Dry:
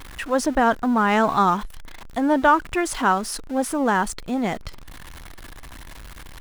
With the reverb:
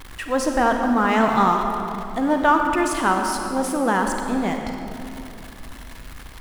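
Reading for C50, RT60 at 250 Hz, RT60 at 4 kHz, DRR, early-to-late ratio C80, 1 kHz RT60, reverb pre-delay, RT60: 3.5 dB, 3.2 s, 1.8 s, 3.0 dB, 4.5 dB, 2.7 s, 35 ms, 2.8 s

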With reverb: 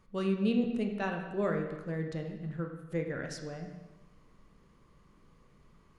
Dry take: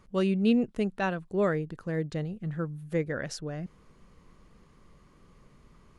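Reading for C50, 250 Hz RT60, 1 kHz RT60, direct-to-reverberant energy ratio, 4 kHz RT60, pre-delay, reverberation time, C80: 5.5 dB, 1.1 s, 1.1 s, 2.5 dB, 1.0 s, 7 ms, 1.1 s, 7.5 dB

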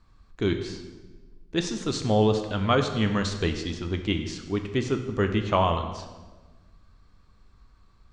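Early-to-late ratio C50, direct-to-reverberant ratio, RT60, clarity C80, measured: 8.5 dB, 5.5 dB, 1.3 s, 10.0 dB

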